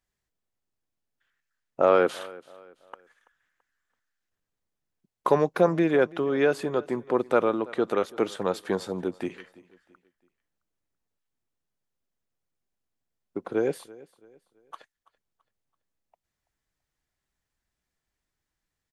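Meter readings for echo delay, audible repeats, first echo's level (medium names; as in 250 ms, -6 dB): 333 ms, 2, -21.5 dB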